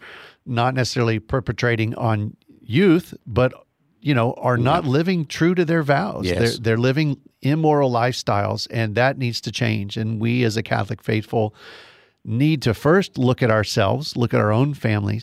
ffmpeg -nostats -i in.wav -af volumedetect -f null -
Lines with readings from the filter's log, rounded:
mean_volume: -20.2 dB
max_volume: -6.0 dB